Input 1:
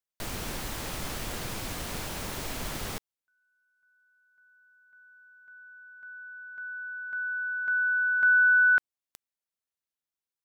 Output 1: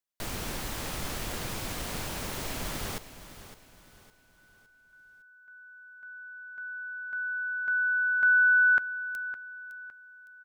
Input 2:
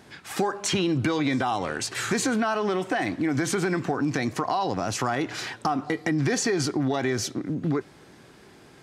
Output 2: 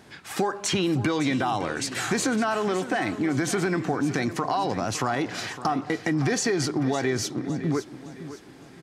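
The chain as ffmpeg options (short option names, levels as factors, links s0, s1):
-af "aecho=1:1:560|1120|1680|2240:0.211|0.0803|0.0305|0.0116"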